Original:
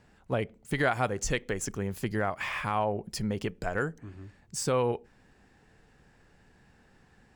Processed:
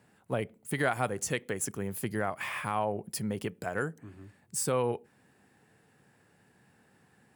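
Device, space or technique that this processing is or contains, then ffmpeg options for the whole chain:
budget condenser microphone: -af "highpass=f=99:w=0.5412,highpass=f=99:w=1.3066,highshelf=f=7900:t=q:w=1.5:g=8.5,volume=0.794"

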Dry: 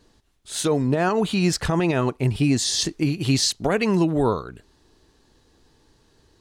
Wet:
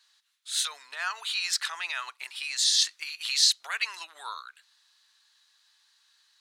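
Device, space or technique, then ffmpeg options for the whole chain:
headphones lying on a table: -af "highpass=f=1300:w=0.5412,highpass=f=1300:w=1.3066,equalizer=f=3900:t=o:w=0.39:g=6,volume=0.841"

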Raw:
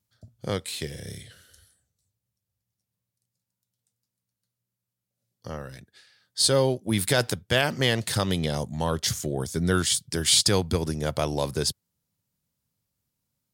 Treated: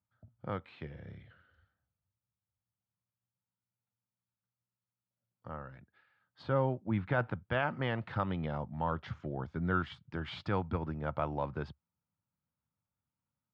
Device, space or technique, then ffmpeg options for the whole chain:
bass cabinet: -filter_complex "[0:a]asettb=1/sr,asplit=3[s0][s1][s2];[s0]atrim=end=6.434[s3];[s1]atrim=start=6.43:end=7.44,asetpts=PTS-STARTPTS,afade=t=in:d=0.004:c=qsin,afade=t=out:st=1.006:d=0.004:c=qsin,bass=f=250:g=3,treble=f=4000:g=-10[s4];[s2]atrim=start=7.436[s5];[s3][s4]acrossfade=d=0.004:c1=hsin:c2=qsin[s6];[s6][s5]acrossfade=d=0.004:c1=qsin:c2=hsin,highpass=63,equalizer=f=71:t=q:w=4:g=3,equalizer=f=420:t=q:w=4:g=-6,equalizer=f=890:t=q:w=4:g=6,equalizer=f=1300:t=q:w=4:g=7,equalizer=f=1900:t=q:w=4:g=-4,lowpass=f=2300:w=0.5412,lowpass=f=2300:w=1.3066,volume=0.376"

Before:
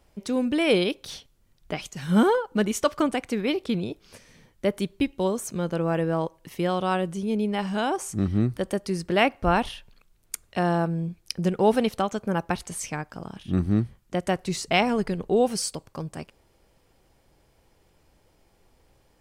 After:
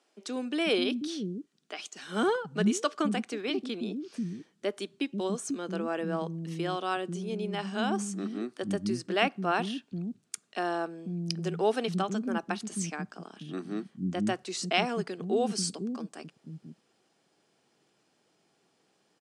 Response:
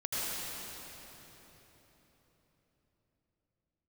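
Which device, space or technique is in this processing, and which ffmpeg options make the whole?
television speaker: -filter_complex "[0:a]highpass=f=180:w=0.5412,highpass=f=180:w=1.3066,equalizer=f=540:t=q:w=4:g=-8,equalizer=f=930:t=q:w=4:g=-7,equalizer=f=2100:t=q:w=4:g=-5,lowpass=f=8900:w=0.5412,lowpass=f=8900:w=1.3066,asettb=1/sr,asplit=3[s0][s1][s2];[s0]atrim=end=0.974[s3];[s1]atrim=start=0.97:end=1.79,asetpts=PTS-STARTPTS,afade=t=in:d=0.004:c=qsin,afade=t=out:st=0.816:d=0.004:c=qsin,highpass=f=730:p=1[s4];[s2]atrim=start=1.786[s5];[s3][s4]acrossfade=d=0.004:c1=hsin:c2=qsin[s6];[s6][s5]acrossfade=d=0.004:c1=qsin:c2=hsin,acrossover=split=270[s7][s8];[s7]adelay=490[s9];[s9][s8]amix=inputs=2:normalize=0,volume=0.794"

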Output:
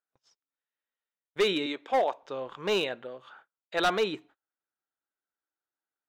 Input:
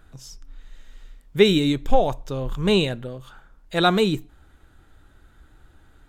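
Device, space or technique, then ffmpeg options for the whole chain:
walkie-talkie: -filter_complex "[0:a]asettb=1/sr,asplit=3[s0][s1][s2];[s0]atrim=end=1.664[s3];[s1]atrim=start=1.66:end=2.23,asetpts=PTS-STARTPTS,afade=t=in:d=0.004:c=qsin,afade=t=out:st=0.566:d=0.004:c=qsin,highpass=290[s4];[s2]atrim=start=2.226[s5];[s3][s4]acrossfade=d=0.004:c1=hsin:c2=qsin[s6];[s6][s5]acrossfade=d=0.004:c1=qsin:c2=hsin,highpass=500,lowpass=3000,asoftclip=type=hard:threshold=0.126,agate=range=0.0224:threshold=0.00251:ratio=16:detection=peak,volume=0.841"

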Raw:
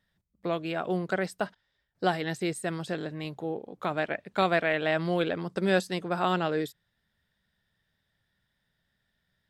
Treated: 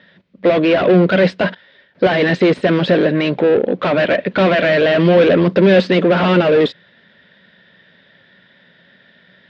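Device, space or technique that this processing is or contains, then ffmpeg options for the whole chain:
overdrive pedal into a guitar cabinet: -filter_complex "[0:a]asplit=2[s0][s1];[s1]highpass=f=720:p=1,volume=50.1,asoftclip=type=tanh:threshold=0.282[s2];[s0][s2]amix=inputs=2:normalize=0,lowpass=f=3100:p=1,volume=0.501,highpass=78,equalizer=f=180:t=q:w=4:g=8,equalizer=f=250:t=q:w=4:g=7,equalizer=f=370:t=q:w=4:g=4,equalizer=f=540:t=q:w=4:g=7,equalizer=f=810:t=q:w=4:g=-7,equalizer=f=1200:t=q:w=4:g=-6,lowpass=f=3900:w=0.5412,lowpass=f=3900:w=1.3066,volume=1.5"

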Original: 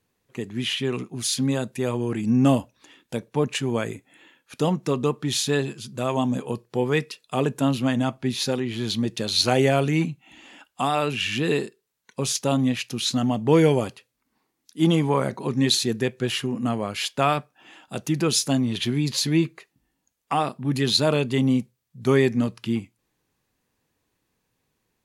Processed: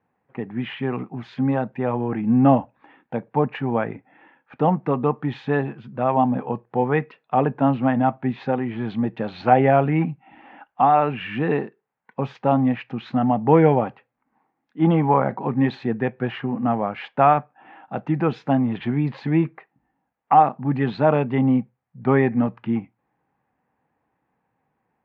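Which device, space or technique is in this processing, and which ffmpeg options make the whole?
bass cabinet: -af "highpass=88,equalizer=f=95:t=q:w=4:g=-7,equalizer=f=380:t=q:w=4:g=-5,equalizer=f=800:t=q:w=4:g=10,lowpass=f=2000:w=0.5412,lowpass=f=2000:w=1.3066,volume=1.41"

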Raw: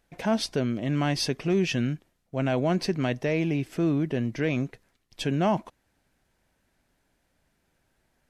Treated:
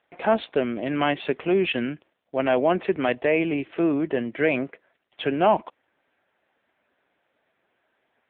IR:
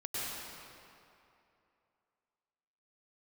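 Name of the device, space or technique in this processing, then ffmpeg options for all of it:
telephone: -filter_complex "[0:a]asplit=3[s0][s1][s2];[s0]afade=t=out:st=4.43:d=0.02[s3];[s1]equalizer=f=630:t=o:w=0.33:g=5,equalizer=f=1600:t=o:w=0.33:g=3,equalizer=f=6300:t=o:w=0.33:g=-7,afade=t=in:st=4.43:d=0.02,afade=t=out:st=5.29:d=0.02[s4];[s2]afade=t=in:st=5.29:d=0.02[s5];[s3][s4][s5]amix=inputs=3:normalize=0,highpass=370,lowpass=3600,volume=2.51" -ar 8000 -c:a libopencore_amrnb -b:a 6700

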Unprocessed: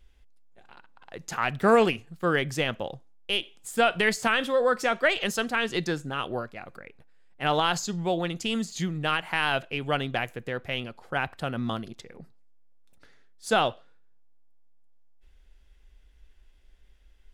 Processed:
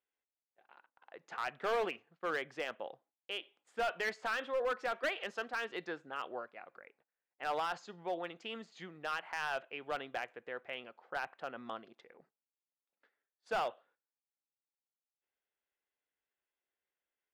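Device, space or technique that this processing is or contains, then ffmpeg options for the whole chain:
walkie-talkie: -af "highpass=460,lowpass=2300,asoftclip=type=hard:threshold=0.0891,agate=range=0.282:threshold=0.001:ratio=16:detection=peak,volume=0.398"

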